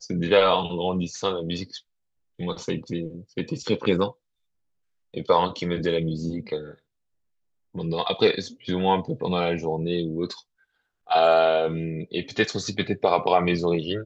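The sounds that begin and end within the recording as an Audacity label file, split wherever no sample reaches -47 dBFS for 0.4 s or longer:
2.390000	4.120000	sound
5.140000	6.750000	sound
7.750000	10.410000	sound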